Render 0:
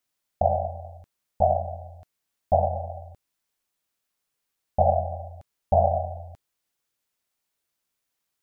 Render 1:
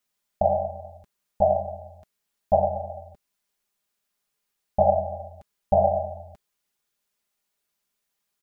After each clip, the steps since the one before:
comb filter 4.9 ms, depth 55%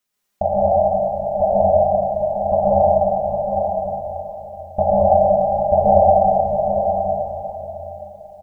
single-tap delay 808 ms −6.5 dB
dense smooth reverb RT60 3.8 s, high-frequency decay 0.5×, pre-delay 105 ms, DRR −7 dB
level +1 dB

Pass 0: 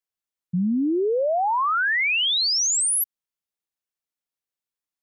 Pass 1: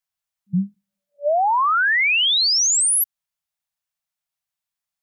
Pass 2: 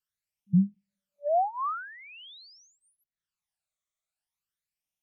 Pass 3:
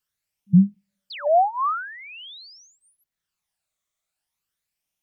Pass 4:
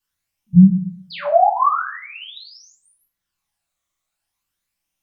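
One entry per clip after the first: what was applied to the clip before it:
brick-wall band-stop 200–580 Hz; level +4 dB
treble cut that deepens with the level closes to 650 Hz, closed at −17 dBFS; all-pass phaser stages 12, 0.45 Hz, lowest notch 270–1,500 Hz; level −1.5 dB
sound drawn into the spectrogram fall, 0:01.10–0:01.30, 490–5,100 Hz −43 dBFS; level +7.5 dB
convolution reverb RT60 0.50 s, pre-delay 3 ms, DRR −6.5 dB; level −2.5 dB

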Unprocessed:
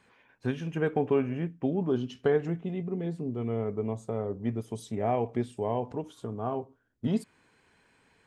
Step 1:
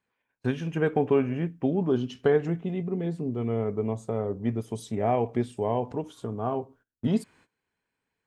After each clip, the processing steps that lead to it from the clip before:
noise gate −58 dBFS, range −21 dB
level +3 dB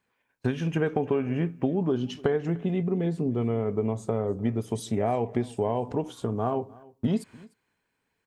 downward compressor, threshold −27 dBFS, peak gain reduction 9.5 dB
single-tap delay 299 ms −23 dB
level +5 dB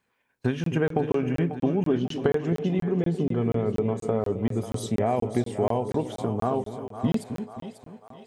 echo with a time of its own for lows and highs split 520 Hz, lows 265 ms, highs 543 ms, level −9.5 dB
regular buffer underruns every 0.24 s, samples 1,024, zero, from 0:00.64
level +1.5 dB

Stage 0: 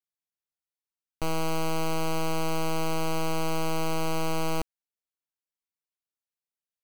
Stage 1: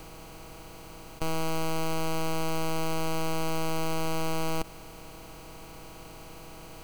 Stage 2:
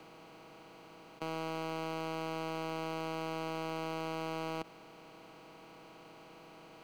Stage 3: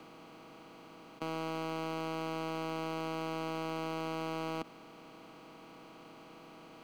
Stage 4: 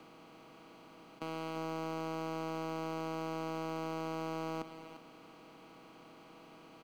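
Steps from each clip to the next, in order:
compressor on every frequency bin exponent 0.2; level −2 dB
three-way crossover with the lows and the highs turned down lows −24 dB, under 150 Hz, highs −15 dB, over 4,600 Hz; level −6 dB
hollow resonant body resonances 250/1,200/3,300 Hz, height 8 dB
single-tap delay 348 ms −11 dB; level −3 dB

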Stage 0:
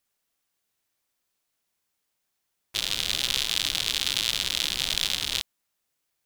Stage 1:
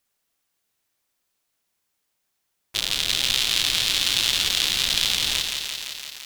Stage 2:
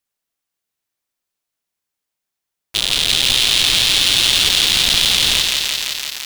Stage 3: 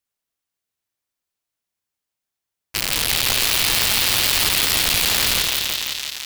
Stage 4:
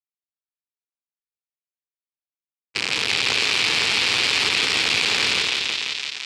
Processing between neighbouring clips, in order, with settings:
feedback echo at a low word length 170 ms, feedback 80%, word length 7 bits, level −5 dB; level +3 dB
leveller curve on the samples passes 3
parametric band 84 Hz +5 dB 0.99 octaves; wrap-around overflow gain 5.5 dB; level −3 dB
noise gate with hold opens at −18 dBFS; loudspeaker in its box 140–6,800 Hz, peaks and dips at 170 Hz −3 dB, 430 Hz +5 dB, 630 Hz −5 dB, 2,400 Hz +6 dB, 6,300 Hz −4 dB; level −1 dB

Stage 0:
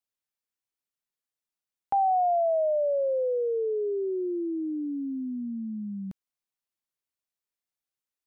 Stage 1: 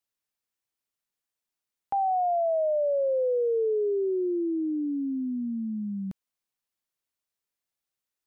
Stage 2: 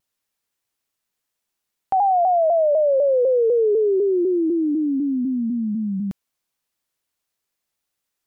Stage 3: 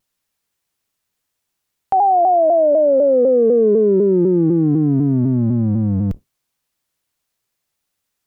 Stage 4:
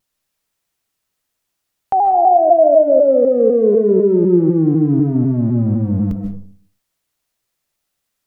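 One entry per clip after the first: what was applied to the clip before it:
brickwall limiter −24.5 dBFS, peak gain reduction 5 dB; level +2.5 dB
pitch modulation by a square or saw wave saw down 4 Hz, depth 100 cents; level +8 dB
sub-octave generator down 1 octave, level 0 dB; level +4 dB
convolution reverb RT60 0.50 s, pre-delay 110 ms, DRR 4.5 dB

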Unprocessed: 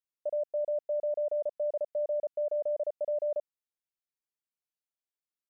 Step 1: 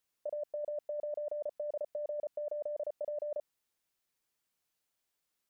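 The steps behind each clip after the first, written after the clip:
compressor whose output falls as the input rises −39 dBFS, ratio −1
level +2 dB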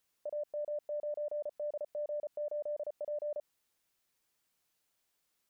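brickwall limiter −37 dBFS, peak gain reduction 7 dB
level +4 dB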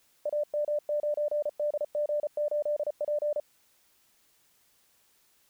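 background noise white −76 dBFS
level +8 dB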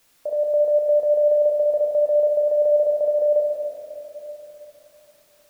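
convolution reverb RT60 3.3 s, pre-delay 6 ms, DRR −1.5 dB
level +4.5 dB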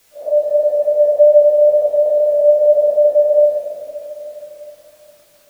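random phases in long frames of 200 ms
level +6.5 dB

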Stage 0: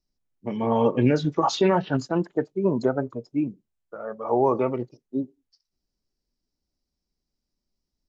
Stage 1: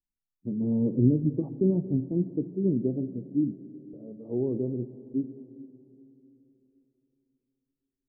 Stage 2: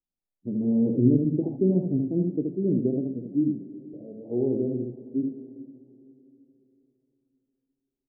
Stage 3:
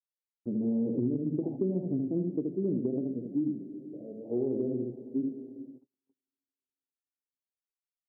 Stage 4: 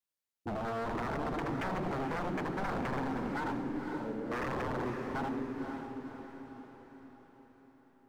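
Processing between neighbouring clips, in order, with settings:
noise gate −46 dBFS, range −14 dB; inverse Chebyshev low-pass filter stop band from 2,000 Hz, stop band 80 dB; convolution reverb RT60 3.5 s, pre-delay 3 ms, DRR 12.5 dB
Butterworth low-pass 830 Hz 48 dB per octave; low-shelf EQ 160 Hz −7.5 dB; single-tap delay 75 ms −4.5 dB; level +3.5 dB
noise gate −47 dBFS, range −41 dB; low-shelf EQ 110 Hz −11.5 dB; downward compressor 6 to 1, threshold −26 dBFS, peak gain reduction 10 dB
wave folding −34 dBFS; feedback delay with all-pass diffusion 523 ms, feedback 51%, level −6 dB; level +3 dB

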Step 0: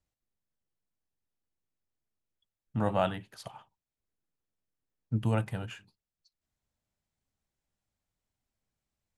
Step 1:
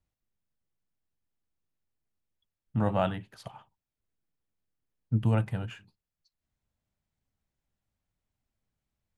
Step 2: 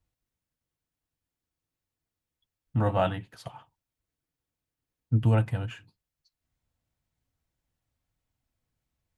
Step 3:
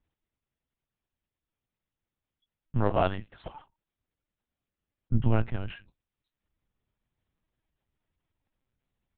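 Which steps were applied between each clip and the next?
bass and treble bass +4 dB, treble −5 dB
notch comb filter 200 Hz; level +3.5 dB
linear-prediction vocoder at 8 kHz pitch kept

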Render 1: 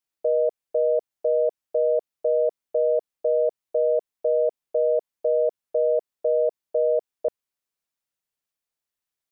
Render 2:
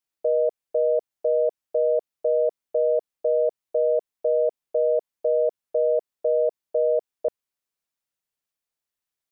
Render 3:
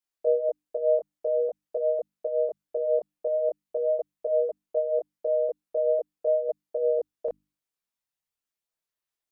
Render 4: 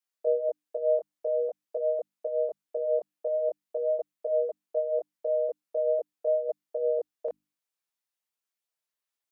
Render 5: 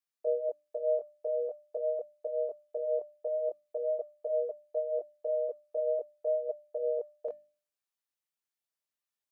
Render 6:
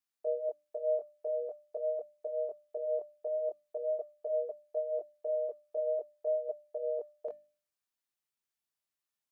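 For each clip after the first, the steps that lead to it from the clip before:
no processing that can be heard
mains-hum notches 50/100/150/200/250/300 Hz; multi-voice chorus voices 4, 0.41 Hz, delay 23 ms, depth 3.3 ms
high-pass filter 460 Hz 6 dB per octave
tuned comb filter 600 Hz, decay 0.4 s, mix 70%; level +5.5 dB
parametric band 510 Hz −7.5 dB 0.25 octaves

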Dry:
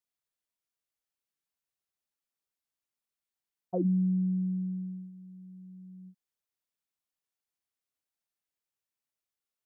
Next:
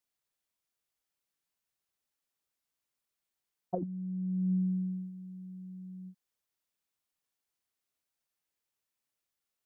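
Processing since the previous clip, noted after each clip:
compressor whose output falls as the input rises −31 dBFS, ratio −0.5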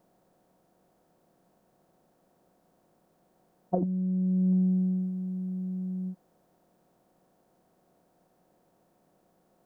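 compressor on every frequency bin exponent 0.6
level +5 dB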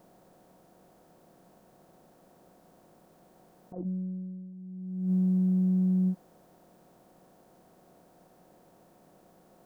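compressor whose output falls as the input rises −33 dBFS, ratio −0.5
level +4 dB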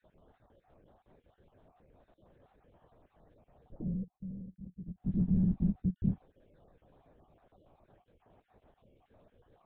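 time-frequency cells dropped at random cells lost 41%
on a send at −14.5 dB: convolution reverb, pre-delay 6 ms
on the sum: linear-prediction vocoder at 8 kHz whisper
level −3 dB

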